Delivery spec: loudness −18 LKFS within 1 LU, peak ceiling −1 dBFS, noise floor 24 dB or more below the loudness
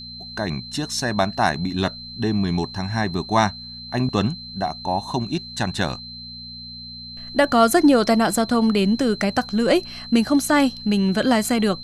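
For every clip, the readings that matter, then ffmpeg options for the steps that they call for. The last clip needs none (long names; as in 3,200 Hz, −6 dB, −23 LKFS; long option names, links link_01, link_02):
mains hum 60 Hz; hum harmonics up to 240 Hz; level of the hum −44 dBFS; interfering tone 4,100 Hz; level of the tone −35 dBFS; integrated loudness −21.0 LKFS; sample peak −3.0 dBFS; target loudness −18.0 LKFS
→ -af "bandreject=frequency=60:width_type=h:width=4,bandreject=frequency=120:width_type=h:width=4,bandreject=frequency=180:width_type=h:width=4,bandreject=frequency=240:width_type=h:width=4"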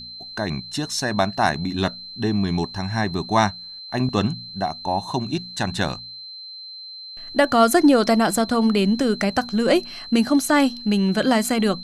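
mains hum none found; interfering tone 4,100 Hz; level of the tone −35 dBFS
→ -af "bandreject=frequency=4100:width=30"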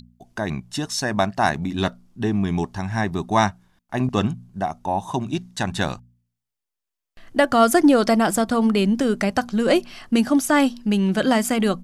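interfering tone none found; integrated loudness −21.5 LKFS; sample peak −3.5 dBFS; target loudness −18.0 LKFS
→ -af "volume=3.5dB,alimiter=limit=-1dB:level=0:latency=1"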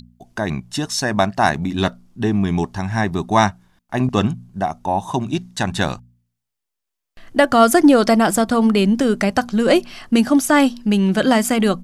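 integrated loudness −18.0 LKFS; sample peak −1.0 dBFS; background noise floor −81 dBFS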